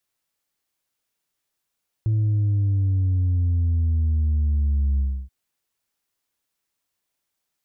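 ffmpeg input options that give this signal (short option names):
-f lavfi -i "aevalsrc='0.126*clip((3.23-t)/0.3,0,1)*tanh(1.26*sin(2*PI*110*3.23/log(65/110)*(exp(log(65/110)*t/3.23)-1)))/tanh(1.26)':d=3.23:s=44100"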